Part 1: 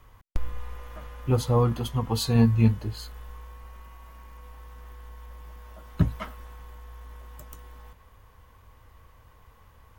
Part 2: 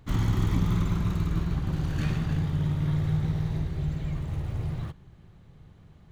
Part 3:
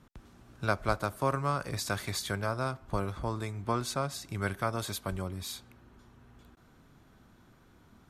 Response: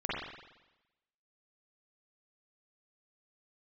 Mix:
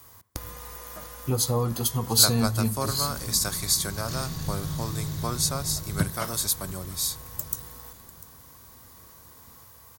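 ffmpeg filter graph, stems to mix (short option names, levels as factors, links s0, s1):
-filter_complex "[0:a]highpass=97,acompressor=threshold=0.0501:ratio=2.5,volume=1.19,asplit=4[s0][s1][s2][s3];[s1]volume=0.0631[s4];[s2]volume=0.126[s5];[1:a]equalizer=f=5100:t=o:w=1.6:g=6.5,adelay=2100,volume=0.944,asplit=2[s6][s7];[s7]volume=0.168[s8];[2:a]adelay=1550,volume=0.891[s9];[s3]apad=whole_len=362210[s10];[s6][s10]sidechaincompress=threshold=0.00316:ratio=8:attack=16:release=1090[s11];[3:a]atrim=start_sample=2205[s12];[s4][s12]afir=irnorm=-1:irlink=0[s13];[s5][s8]amix=inputs=2:normalize=0,aecho=0:1:696:1[s14];[s0][s11][s9][s13][s14]amix=inputs=5:normalize=0,aexciter=amount=5.3:drive=5.2:freq=4100"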